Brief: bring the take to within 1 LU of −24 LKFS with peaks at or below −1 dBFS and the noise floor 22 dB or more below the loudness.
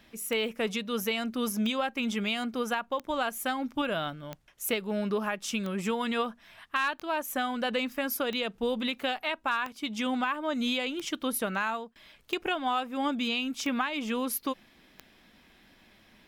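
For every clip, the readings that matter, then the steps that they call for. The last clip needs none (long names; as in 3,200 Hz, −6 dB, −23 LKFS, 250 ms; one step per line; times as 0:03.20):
number of clicks 12; integrated loudness −31.0 LKFS; sample peak −16.0 dBFS; target loudness −24.0 LKFS
→ click removal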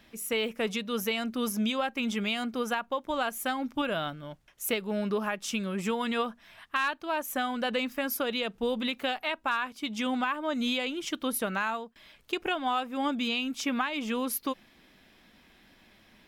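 number of clicks 0; integrated loudness −31.0 LKFS; sample peak −16.0 dBFS; target loudness −24.0 LKFS
→ level +7 dB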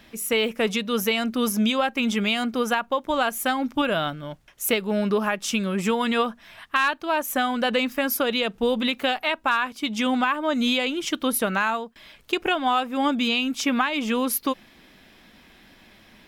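integrated loudness −24.0 LKFS; sample peak −9.0 dBFS; background noise floor −54 dBFS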